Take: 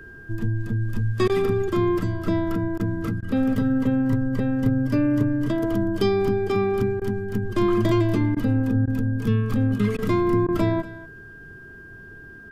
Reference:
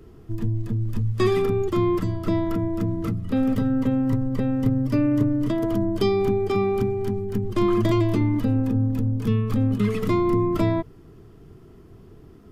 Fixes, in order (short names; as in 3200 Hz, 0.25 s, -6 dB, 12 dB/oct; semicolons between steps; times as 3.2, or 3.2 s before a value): notch 1600 Hz, Q 30; interpolate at 1.28/2.78/3.21/7/8.35/8.86/9.97/10.47, 14 ms; inverse comb 0.24 s -18 dB